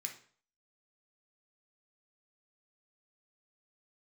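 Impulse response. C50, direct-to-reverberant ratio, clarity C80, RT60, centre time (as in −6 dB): 9.0 dB, 2.0 dB, 14.5 dB, 0.50 s, 16 ms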